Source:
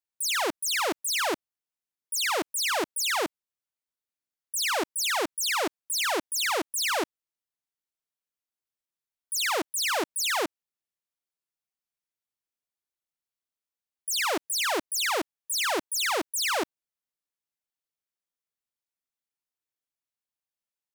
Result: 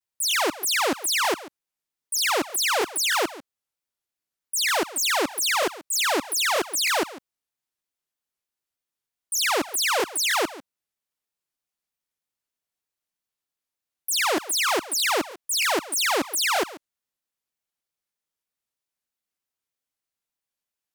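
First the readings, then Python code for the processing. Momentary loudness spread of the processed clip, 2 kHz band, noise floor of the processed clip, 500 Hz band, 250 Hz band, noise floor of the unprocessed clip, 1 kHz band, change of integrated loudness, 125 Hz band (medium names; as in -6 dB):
4 LU, +4.0 dB, under -85 dBFS, +4.0 dB, +4.0 dB, under -85 dBFS, +4.0 dB, +4.0 dB, no reading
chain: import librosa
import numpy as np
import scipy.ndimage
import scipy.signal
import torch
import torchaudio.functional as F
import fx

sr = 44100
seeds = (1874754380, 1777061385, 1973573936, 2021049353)

y = x + 10.0 ** (-17.0 / 20.0) * np.pad(x, (int(139 * sr / 1000.0), 0))[:len(x)]
y = fx.vibrato_shape(y, sr, shape='saw_down', rate_hz=3.2, depth_cents=250.0)
y = F.gain(torch.from_numpy(y), 4.0).numpy()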